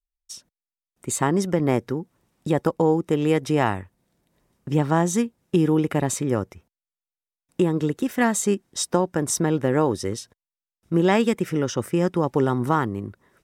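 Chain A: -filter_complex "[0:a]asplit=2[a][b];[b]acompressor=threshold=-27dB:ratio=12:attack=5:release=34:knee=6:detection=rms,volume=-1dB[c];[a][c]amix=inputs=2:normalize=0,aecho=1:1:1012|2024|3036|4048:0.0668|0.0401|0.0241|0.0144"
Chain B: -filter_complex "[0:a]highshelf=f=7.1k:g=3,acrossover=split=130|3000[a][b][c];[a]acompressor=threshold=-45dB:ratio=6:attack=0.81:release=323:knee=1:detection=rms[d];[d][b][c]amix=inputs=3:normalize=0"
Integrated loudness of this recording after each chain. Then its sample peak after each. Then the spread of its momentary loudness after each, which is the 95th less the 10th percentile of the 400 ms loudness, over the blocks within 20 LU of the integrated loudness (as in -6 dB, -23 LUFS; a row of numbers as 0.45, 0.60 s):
-21.0, -23.5 LUFS; -5.0, -5.5 dBFS; 15, 14 LU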